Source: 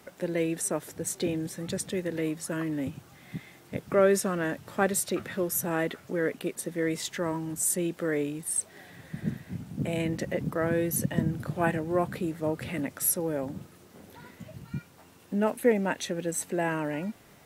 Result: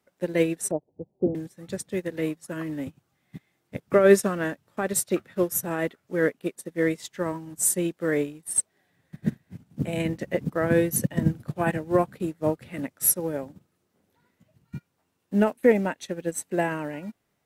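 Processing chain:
0:00.71–0:01.35: Butterworth low-pass 830 Hz 48 dB per octave
boost into a limiter +16 dB
expander for the loud parts 2.5 to 1, over −27 dBFS
level −4.5 dB

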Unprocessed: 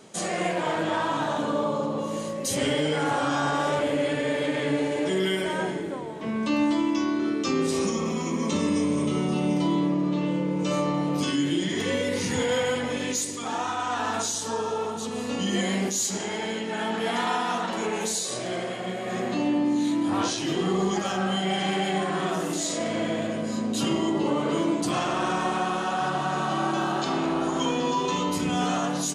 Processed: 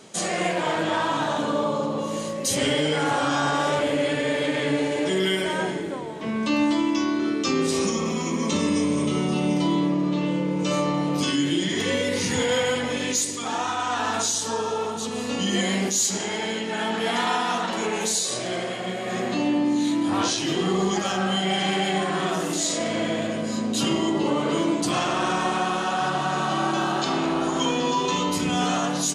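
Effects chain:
parametric band 4,500 Hz +3.5 dB 2.5 octaves
level +1.5 dB

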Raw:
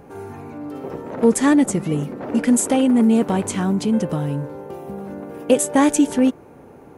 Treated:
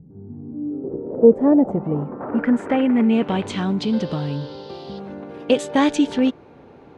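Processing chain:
low-pass filter sweep 170 Hz → 3,900 Hz, 0:00.05–0:03.55
0:03.81–0:04.98: noise in a band 2,900–4,900 Hz −46 dBFS
level −2 dB

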